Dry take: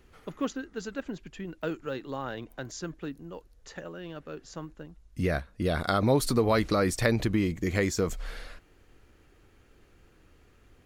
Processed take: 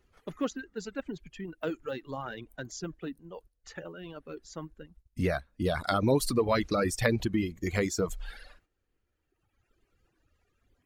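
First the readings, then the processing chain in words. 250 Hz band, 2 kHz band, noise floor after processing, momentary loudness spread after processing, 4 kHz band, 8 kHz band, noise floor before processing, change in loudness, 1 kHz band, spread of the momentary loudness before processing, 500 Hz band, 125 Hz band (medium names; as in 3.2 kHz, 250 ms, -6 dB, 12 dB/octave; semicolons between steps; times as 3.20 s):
-2.0 dB, -2.0 dB, -79 dBFS, 18 LU, -1.5 dB, -1.0 dB, -61 dBFS, -1.5 dB, -1.5 dB, 19 LU, -1.5 dB, -3.0 dB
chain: coarse spectral quantiser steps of 15 dB; gate -52 dBFS, range -9 dB; reverb removal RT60 1.8 s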